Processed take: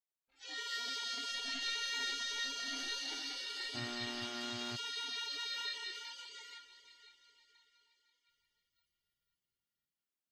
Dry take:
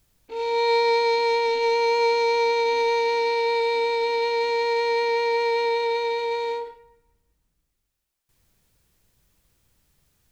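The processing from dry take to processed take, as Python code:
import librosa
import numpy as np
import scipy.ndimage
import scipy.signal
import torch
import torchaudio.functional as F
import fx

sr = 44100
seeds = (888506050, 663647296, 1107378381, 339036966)

y = fx.noise_reduce_blind(x, sr, reduce_db=29)
y = fx.echo_diffused(y, sr, ms=478, feedback_pct=47, wet_db=-13)
y = fx.dmg_buzz(y, sr, base_hz=120.0, harmonics=36, level_db=-41.0, tilt_db=-6, odd_only=False, at=(3.74, 4.75), fade=0.02)
y = fx.spec_gate(y, sr, threshold_db=-20, keep='weak')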